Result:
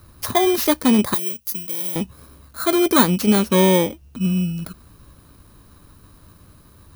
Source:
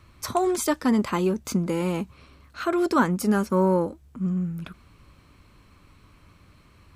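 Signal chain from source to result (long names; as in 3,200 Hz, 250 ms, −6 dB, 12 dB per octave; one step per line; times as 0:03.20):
samples in bit-reversed order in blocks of 16 samples
0:01.14–0:01.96: first-order pre-emphasis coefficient 0.9
level +6 dB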